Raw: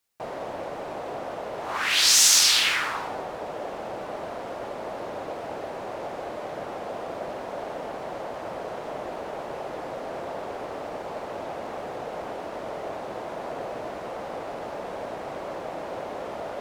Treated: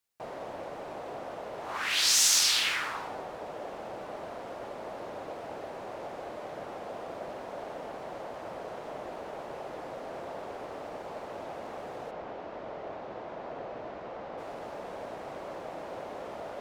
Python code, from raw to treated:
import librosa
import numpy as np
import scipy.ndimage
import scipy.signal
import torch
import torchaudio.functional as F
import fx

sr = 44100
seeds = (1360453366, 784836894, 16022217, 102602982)

y = fx.air_absorb(x, sr, metres=140.0, at=(12.1, 14.37), fade=0.02)
y = y * 10.0 ** (-6.0 / 20.0)